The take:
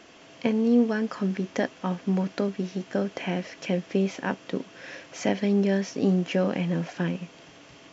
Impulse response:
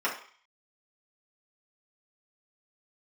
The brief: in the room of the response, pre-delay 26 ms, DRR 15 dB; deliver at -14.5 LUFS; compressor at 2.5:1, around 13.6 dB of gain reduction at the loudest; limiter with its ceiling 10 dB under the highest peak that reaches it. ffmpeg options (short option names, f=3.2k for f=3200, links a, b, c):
-filter_complex "[0:a]acompressor=threshold=-38dB:ratio=2.5,alimiter=level_in=5.5dB:limit=-24dB:level=0:latency=1,volume=-5.5dB,asplit=2[a][b];[1:a]atrim=start_sample=2205,adelay=26[c];[b][c]afir=irnorm=-1:irlink=0,volume=-25.5dB[d];[a][d]amix=inputs=2:normalize=0,volume=25.5dB"